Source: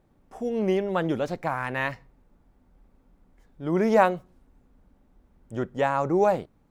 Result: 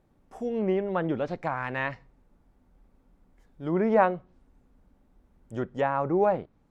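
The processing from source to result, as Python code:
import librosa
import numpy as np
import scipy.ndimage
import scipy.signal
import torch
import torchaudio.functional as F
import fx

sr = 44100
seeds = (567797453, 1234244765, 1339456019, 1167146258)

y = fx.env_lowpass_down(x, sr, base_hz=2200.0, full_db=-21.0)
y = F.gain(torch.from_numpy(y), -2.0).numpy()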